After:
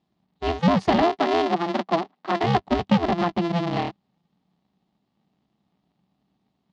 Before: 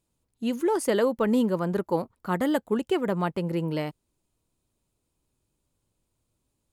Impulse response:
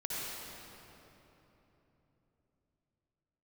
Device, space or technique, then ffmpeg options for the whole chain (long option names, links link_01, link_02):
ring modulator pedal into a guitar cabinet: -filter_complex "[0:a]aeval=exprs='val(0)*sgn(sin(2*PI*170*n/s))':channel_layout=same,highpass=79,equalizer=frequency=97:width_type=q:width=4:gain=-7,equalizer=frequency=190:width_type=q:width=4:gain=9,equalizer=frequency=500:width_type=q:width=4:gain=-10,equalizer=frequency=750:width_type=q:width=4:gain=5,equalizer=frequency=1500:width_type=q:width=4:gain=-7,equalizer=frequency=2400:width_type=q:width=4:gain=-4,lowpass=frequency=4400:width=0.5412,lowpass=frequency=4400:width=1.3066,asettb=1/sr,asplit=3[link_01][link_02][link_03];[link_01]atrim=end=1.024[link_04];[link_02]atrim=start=1.02:end=2.44,asetpts=PTS-STARTPTS,afade=type=in:duration=0.004:curve=qsin,afade=type=out:start_time=1.416:duration=0.004:curve=qsin,highpass=270[link_05];[link_03]atrim=start=2.436[link_06];[link_04][link_05]acrossfade=duration=0.004:curve1=hsin:curve2=qsin[link_07];[link_07][link_06]acrossfade=duration=0.004:curve1=qsin:curve2=hsin,volume=4.5dB"